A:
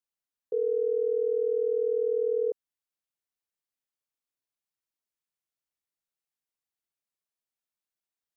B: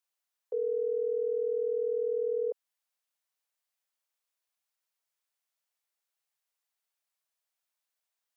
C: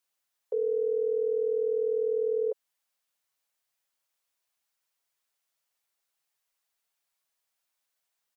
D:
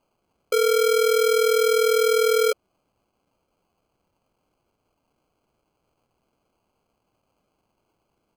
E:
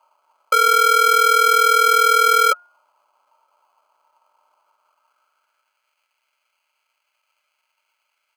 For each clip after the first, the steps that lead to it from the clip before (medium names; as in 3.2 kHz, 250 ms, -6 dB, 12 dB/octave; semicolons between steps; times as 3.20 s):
high-pass 520 Hz 24 dB/octave; in parallel at -2 dB: peak limiter -37 dBFS, peak gain reduction 10.5 dB
comb 7.3 ms, depth 40%; trim +4 dB
sample-and-hold 24×; trim +8.5 dB
de-hum 356.2 Hz, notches 7; small resonant body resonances 600/910/1300 Hz, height 11 dB, ringing for 45 ms; high-pass sweep 1 kHz -> 2 kHz, 4.57–6.00 s; trim +5 dB